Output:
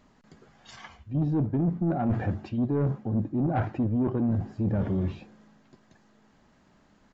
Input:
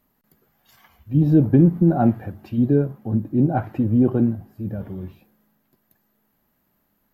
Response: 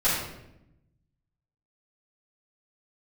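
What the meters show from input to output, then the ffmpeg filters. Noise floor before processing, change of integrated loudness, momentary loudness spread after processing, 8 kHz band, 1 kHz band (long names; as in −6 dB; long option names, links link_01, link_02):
−69 dBFS, −8.0 dB, 7 LU, can't be measured, −5.5 dB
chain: -af "areverse,acompressor=threshold=-29dB:ratio=10,areverse,asoftclip=type=tanh:threshold=-28.5dB,aresample=16000,aresample=44100,volume=9dB"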